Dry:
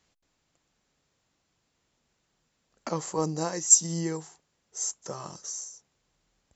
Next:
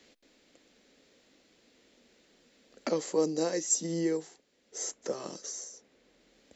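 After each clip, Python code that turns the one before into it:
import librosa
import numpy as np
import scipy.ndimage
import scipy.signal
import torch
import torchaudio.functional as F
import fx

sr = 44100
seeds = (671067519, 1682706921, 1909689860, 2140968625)

y = fx.graphic_eq(x, sr, hz=(125, 250, 500, 1000, 2000, 4000), db=(-10, 12, 11, -5, 7, 7))
y = fx.band_squash(y, sr, depth_pct=40)
y = y * 10.0 ** (-7.5 / 20.0)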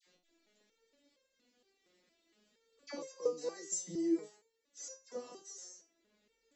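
y = fx.vibrato(x, sr, rate_hz=8.3, depth_cents=56.0)
y = fx.dispersion(y, sr, late='lows', ms=65.0, hz=1300.0)
y = fx.resonator_held(y, sr, hz=4.3, low_hz=180.0, high_hz=530.0)
y = y * 10.0 ** (3.5 / 20.0)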